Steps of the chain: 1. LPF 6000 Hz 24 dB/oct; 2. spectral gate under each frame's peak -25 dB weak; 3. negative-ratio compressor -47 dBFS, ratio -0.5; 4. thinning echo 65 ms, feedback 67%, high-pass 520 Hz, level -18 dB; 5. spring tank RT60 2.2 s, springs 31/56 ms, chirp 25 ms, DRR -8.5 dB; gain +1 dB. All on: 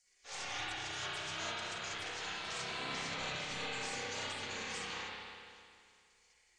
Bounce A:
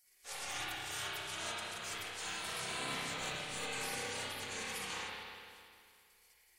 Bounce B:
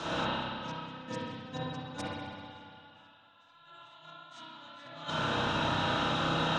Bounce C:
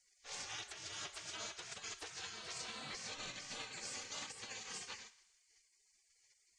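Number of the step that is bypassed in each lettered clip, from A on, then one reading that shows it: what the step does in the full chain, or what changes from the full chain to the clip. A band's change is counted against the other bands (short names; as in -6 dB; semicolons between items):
1, 8 kHz band +3.5 dB; 2, 8 kHz band -17.0 dB; 5, momentary loudness spread change -5 LU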